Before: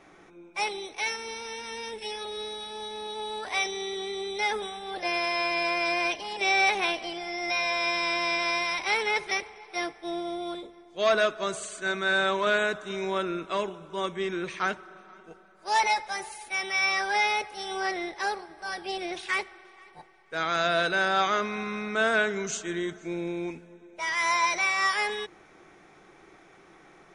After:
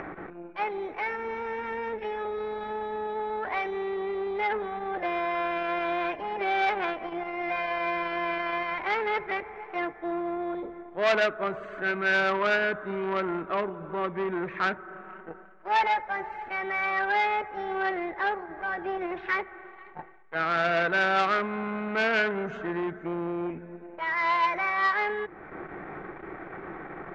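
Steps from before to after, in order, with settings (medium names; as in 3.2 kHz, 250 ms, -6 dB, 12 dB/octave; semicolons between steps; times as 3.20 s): Chebyshev low-pass 1.8 kHz, order 3; upward compressor, threshold -29 dBFS; transformer saturation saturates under 1.9 kHz; trim +3.5 dB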